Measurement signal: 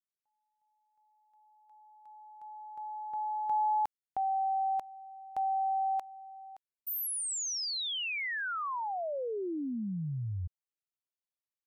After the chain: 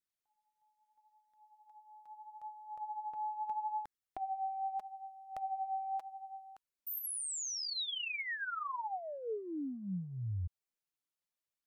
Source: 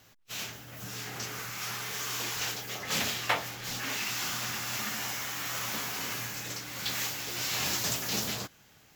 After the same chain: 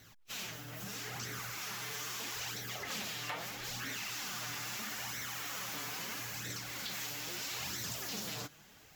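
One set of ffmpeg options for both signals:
-af "acompressor=threshold=0.0112:ratio=4:attack=4.5:release=65:knee=6,flanger=delay=0.5:depth=6.4:regen=20:speed=0.77:shape=sinusoidal,volume=1.58"

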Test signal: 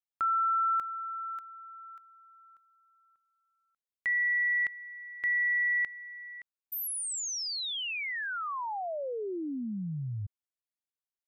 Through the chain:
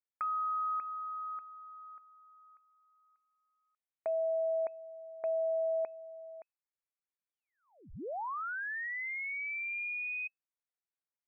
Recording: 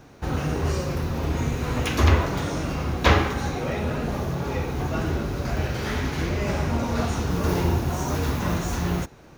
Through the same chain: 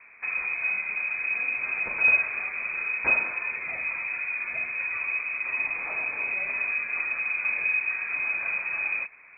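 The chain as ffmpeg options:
-filter_complex "[0:a]acrossover=split=170|2000[s0][s1][s2];[s1]acompressor=threshold=0.0251:ratio=6:attack=6.4:knee=2.83:detection=peak[s3];[s0][s3][s2]amix=inputs=3:normalize=0,lowpass=f=2200:t=q:w=0.5098,lowpass=f=2200:t=q:w=0.6013,lowpass=f=2200:t=q:w=0.9,lowpass=f=2200:t=q:w=2.563,afreqshift=-2600,volume=0.75"

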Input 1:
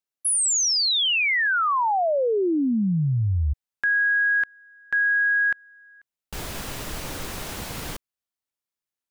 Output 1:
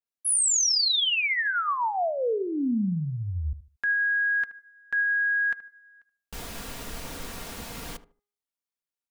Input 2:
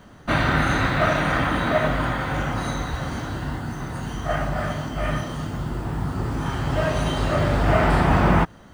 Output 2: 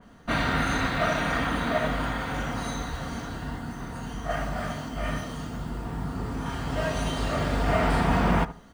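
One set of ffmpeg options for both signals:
-filter_complex "[0:a]aecho=1:1:4.3:0.36,bandreject=f=410.1:t=h:w=4,bandreject=f=820.2:t=h:w=4,bandreject=f=1230.3:t=h:w=4,bandreject=f=1640.4:t=h:w=4,bandreject=f=2050.5:t=h:w=4,asplit=2[s0][s1];[s1]adelay=76,lowpass=f=1300:p=1,volume=0.2,asplit=2[s2][s3];[s3]adelay=76,lowpass=f=1300:p=1,volume=0.26,asplit=2[s4][s5];[s5]adelay=76,lowpass=f=1300:p=1,volume=0.26[s6];[s2][s4][s6]amix=inputs=3:normalize=0[s7];[s0][s7]amix=inputs=2:normalize=0,adynamicequalizer=threshold=0.0178:dfrequency=2900:dqfactor=0.7:tfrequency=2900:tqfactor=0.7:attack=5:release=100:ratio=0.375:range=2:mode=boostabove:tftype=highshelf,volume=0.531"

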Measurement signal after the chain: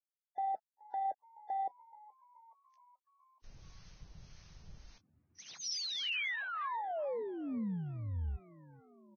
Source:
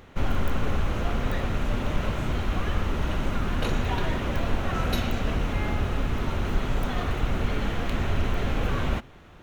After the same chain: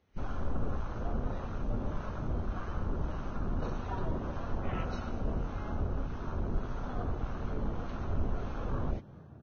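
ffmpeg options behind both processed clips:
-filter_complex "[0:a]afwtdn=0.0282,aemphasis=mode=production:type=50kf,acrossover=split=860[s0][s1];[s0]aeval=exprs='val(0)*(1-0.5/2+0.5/2*cos(2*PI*1.7*n/s))':c=same[s2];[s1]aeval=exprs='val(0)*(1-0.5/2-0.5/2*cos(2*PI*1.7*n/s))':c=same[s3];[s2][s3]amix=inputs=2:normalize=0,acrossover=split=2200[s4][s5];[s4]asplit=6[s6][s7][s8][s9][s10][s11];[s7]adelay=426,afreqshift=67,volume=0.0794[s12];[s8]adelay=852,afreqshift=134,volume=0.0501[s13];[s9]adelay=1278,afreqshift=201,volume=0.0316[s14];[s10]adelay=1704,afreqshift=268,volume=0.02[s15];[s11]adelay=2130,afreqshift=335,volume=0.0124[s16];[s6][s12][s13][s14][s15][s16]amix=inputs=6:normalize=0[s17];[s5]asoftclip=type=tanh:threshold=0.0355[s18];[s17][s18]amix=inputs=2:normalize=0,volume=0.501" -ar 16000 -c:a libvorbis -b:a 16k

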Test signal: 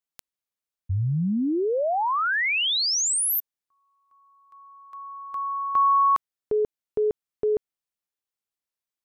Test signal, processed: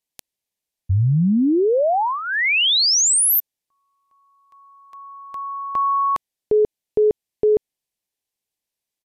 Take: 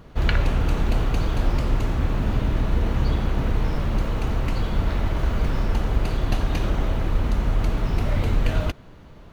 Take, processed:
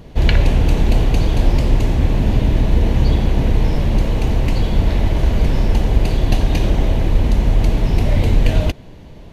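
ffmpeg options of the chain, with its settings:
-af "equalizer=f=1300:w=2.4:g=-12.5,aresample=32000,aresample=44100,volume=2.37"

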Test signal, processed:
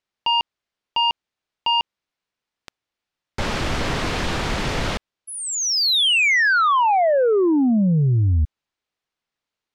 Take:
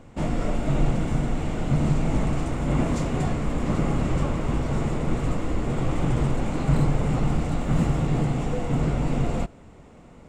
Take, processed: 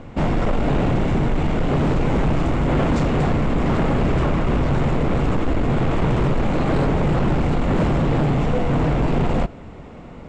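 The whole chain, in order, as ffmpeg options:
-af "lowpass=4300,aeval=exprs='0.376*sin(PI/2*3.98*val(0)/0.376)':c=same,volume=0.501"

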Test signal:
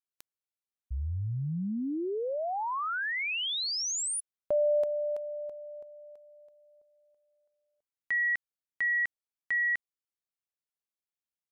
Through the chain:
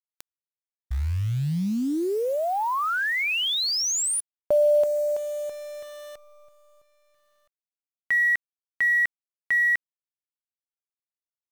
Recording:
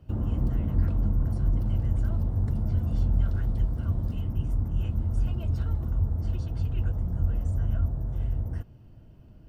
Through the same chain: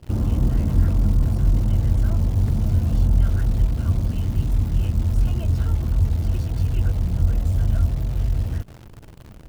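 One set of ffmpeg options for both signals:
-af "acontrast=77,acrusher=bits=8:dc=4:mix=0:aa=0.000001"

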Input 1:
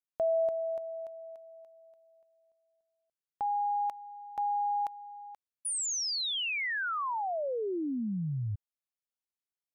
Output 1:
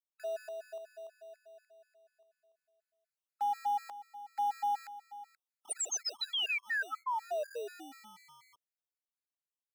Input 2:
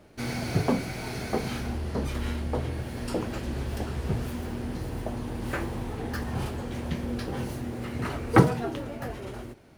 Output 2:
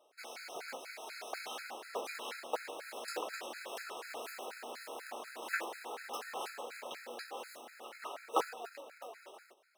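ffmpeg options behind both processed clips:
-filter_complex "[0:a]aeval=exprs='0.668*(cos(1*acos(clip(val(0)/0.668,-1,1)))-cos(1*PI/2))+0.0596*(cos(2*acos(clip(val(0)/0.668,-1,1)))-cos(2*PI/2))+0.133*(cos(3*acos(clip(val(0)/0.668,-1,1)))-cos(3*PI/2))+0.0376*(cos(5*acos(clip(val(0)/0.668,-1,1)))-cos(5*PI/2))':c=same,dynaudnorm=f=230:g=13:m=2.51,asplit=2[s0][s1];[s1]acrusher=samples=41:mix=1:aa=0.000001,volume=0.282[s2];[s0][s2]amix=inputs=2:normalize=0,asoftclip=type=tanh:threshold=0.75,highpass=f=530:w=0.5412,highpass=f=530:w=1.3066,afftfilt=real='re*gt(sin(2*PI*4.1*pts/sr)*(1-2*mod(floor(b*sr/1024/1300),2)),0)':imag='im*gt(sin(2*PI*4.1*pts/sr)*(1-2*mod(floor(b*sr/1024/1300),2)),0)':win_size=1024:overlap=0.75,volume=0.631"

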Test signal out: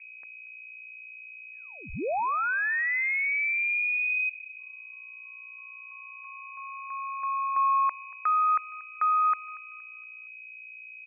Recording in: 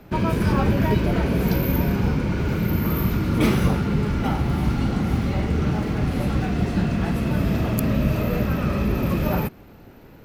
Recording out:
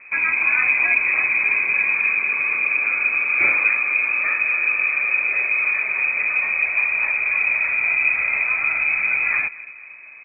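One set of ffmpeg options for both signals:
-filter_complex "[0:a]aeval=exprs='val(0)+0.00501*(sin(2*PI*60*n/s)+sin(2*PI*2*60*n/s)/2+sin(2*PI*3*60*n/s)/3+sin(2*PI*4*60*n/s)/4+sin(2*PI*5*60*n/s)/5)':c=same,asplit=2[s0][s1];[s1]adelay=234,lowpass=f=1800:p=1,volume=0.112,asplit=2[s2][s3];[s3]adelay=234,lowpass=f=1800:p=1,volume=0.47,asplit=2[s4][s5];[s5]adelay=234,lowpass=f=1800:p=1,volume=0.47,asplit=2[s6][s7];[s7]adelay=234,lowpass=f=1800:p=1,volume=0.47[s8];[s0][s2][s4][s6][s8]amix=inputs=5:normalize=0,lowpass=f=2200:t=q:w=0.5098,lowpass=f=2200:t=q:w=0.6013,lowpass=f=2200:t=q:w=0.9,lowpass=f=2200:t=q:w=2.563,afreqshift=-2600,volume=1.12"

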